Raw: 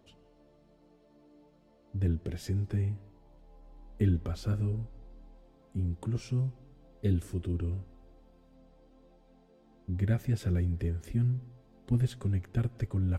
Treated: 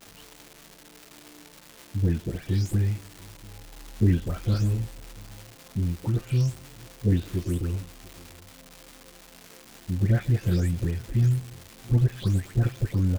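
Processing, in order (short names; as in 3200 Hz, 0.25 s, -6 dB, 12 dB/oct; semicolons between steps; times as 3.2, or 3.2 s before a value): spectral delay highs late, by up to 0.277 s; echo 0.691 s -23.5 dB; crackle 560/s -42 dBFS; gain +7 dB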